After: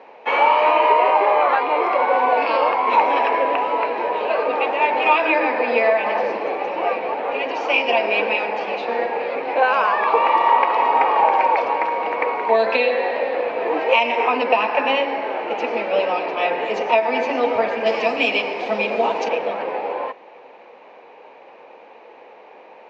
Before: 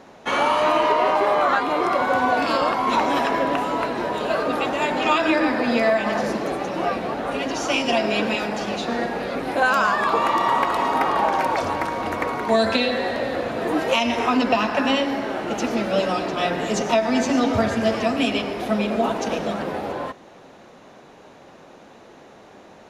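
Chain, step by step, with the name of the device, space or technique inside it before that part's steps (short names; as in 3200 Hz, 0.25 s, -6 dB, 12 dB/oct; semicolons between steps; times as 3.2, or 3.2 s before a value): 17.86–19.29 tone controls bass +5 dB, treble +14 dB; phone earpiece (speaker cabinet 440–3900 Hz, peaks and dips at 480 Hz +9 dB, 890 Hz +8 dB, 1400 Hz -5 dB, 2400 Hz +9 dB, 3600 Hz -7 dB)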